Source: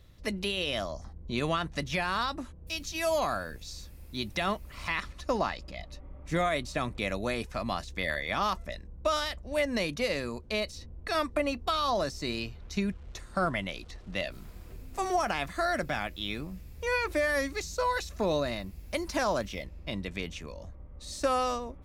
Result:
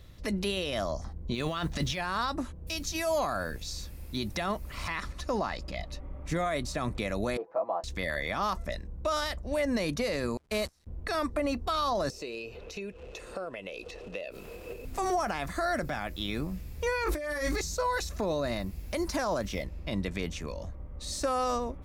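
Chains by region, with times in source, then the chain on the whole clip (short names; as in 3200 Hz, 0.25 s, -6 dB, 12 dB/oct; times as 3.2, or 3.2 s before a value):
1.34–2.01 bell 3400 Hz +7.5 dB 1 oct + negative-ratio compressor -31 dBFS, ratio -0.5 + modulation noise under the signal 34 dB
7.37–7.84 Butterworth band-pass 630 Hz, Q 1.3 + comb 6.1 ms, depth 78%
10.37–10.87 delta modulation 64 kbps, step -34 dBFS + gate -36 dBFS, range -33 dB
12.1–14.85 low shelf 240 Hz -9 dB + compressor 5:1, threshold -48 dBFS + small resonant body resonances 470/2600 Hz, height 18 dB, ringing for 25 ms
17.04–17.61 doubler 20 ms -3.5 dB + negative-ratio compressor -35 dBFS
whole clip: dynamic EQ 2900 Hz, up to -6 dB, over -48 dBFS, Q 1.4; limiter -26 dBFS; gain +5 dB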